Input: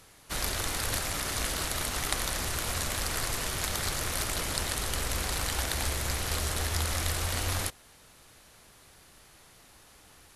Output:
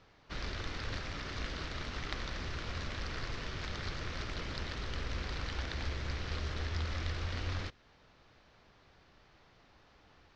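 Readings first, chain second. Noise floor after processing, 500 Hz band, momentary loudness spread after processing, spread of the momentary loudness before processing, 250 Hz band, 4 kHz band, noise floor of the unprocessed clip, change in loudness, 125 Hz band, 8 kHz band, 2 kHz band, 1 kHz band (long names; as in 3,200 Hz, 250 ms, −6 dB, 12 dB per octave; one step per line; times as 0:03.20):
−64 dBFS, −7.5 dB, 3 LU, 1 LU, −4.5 dB, −10.0 dB, −57 dBFS, −9.0 dB, −4.0 dB, −23.5 dB, −7.0 dB, −9.0 dB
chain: dynamic equaliser 770 Hz, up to −7 dB, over −53 dBFS, Q 1.3
Butterworth low-pass 5,600 Hz 36 dB per octave
high-shelf EQ 3,600 Hz −10 dB
level −4 dB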